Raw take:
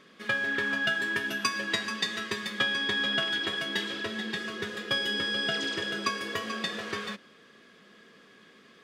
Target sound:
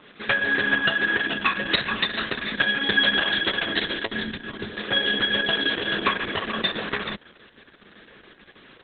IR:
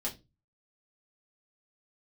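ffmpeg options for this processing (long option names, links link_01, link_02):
-filter_complex "[0:a]asplit=3[link_01][link_02][link_03];[link_01]afade=type=out:start_time=0.7:duration=0.02[link_04];[link_02]bandreject=frequency=4000:width=14,afade=type=in:start_time=0.7:duration=0.02,afade=type=out:start_time=1.81:duration=0.02[link_05];[link_03]afade=type=in:start_time=1.81:duration=0.02[link_06];[link_04][link_05][link_06]amix=inputs=3:normalize=0,asettb=1/sr,asplit=3[link_07][link_08][link_09];[link_07]atrim=end=4.234[link_10];[link_08]atrim=start=4.23:end=4.77,asetpts=PTS-STARTPTS,afade=type=in:duration=0.004:curve=qsin,afade=type=out:start_time=0.536:duration=0.004:curve=qsin,acrossover=split=260[link_11][link_12];[link_12]acompressor=threshold=-42dB:ratio=3[link_13];[link_11][link_13]amix=inputs=2:normalize=0[link_14];[link_09]atrim=start=4.766[link_15];[link_10][link_14]acrossfade=duration=0.004:curve1=hsin:curve2=qsin[link_16];[link_16][link_15]acrossfade=duration=0.004:curve1=qsin:curve2=hsin,volume=7dB" -ar 48000 -c:a libopus -b:a 6k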